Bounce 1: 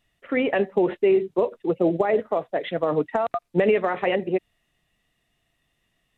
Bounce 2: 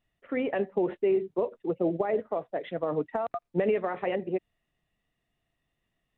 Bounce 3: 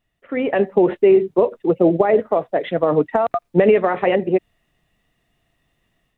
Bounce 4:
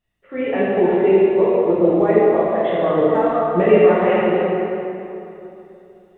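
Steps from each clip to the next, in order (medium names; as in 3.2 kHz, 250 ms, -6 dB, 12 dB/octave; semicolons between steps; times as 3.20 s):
treble shelf 2.3 kHz -8.5 dB; trim -6 dB
level rider gain up to 8 dB; trim +4.5 dB
plate-style reverb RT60 3 s, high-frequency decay 0.7×, DRR -8.5 dB; trim -7.5 dB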